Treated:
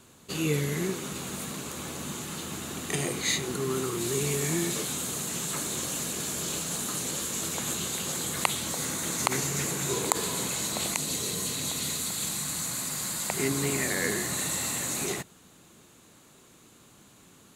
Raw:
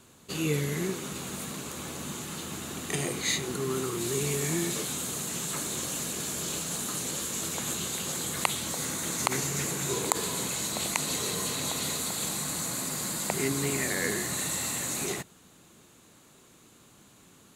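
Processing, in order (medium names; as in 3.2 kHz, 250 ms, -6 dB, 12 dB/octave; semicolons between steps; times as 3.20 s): 10.94–13.37 s: peaking EQ 1.3 kHz -> 290 Hz -6.5 dB 2.4 oct; trim +1 dB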